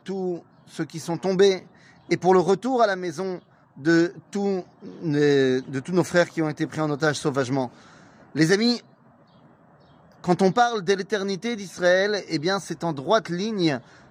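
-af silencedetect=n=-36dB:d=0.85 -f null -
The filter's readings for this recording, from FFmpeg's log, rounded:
silence_start: 8.80
silence_end: 10.24 | silence_duration: 1.44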